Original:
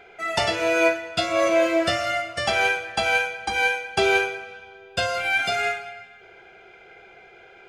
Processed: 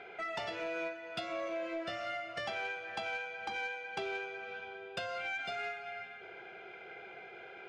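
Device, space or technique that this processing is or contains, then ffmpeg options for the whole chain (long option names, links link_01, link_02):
AM radio: -af "highpass=130,lowpass=4000,acompressor=threshold=-36dB:ratio=5,asoftclip=type=tanh:threshold=-27.5dB,volume=-1dB"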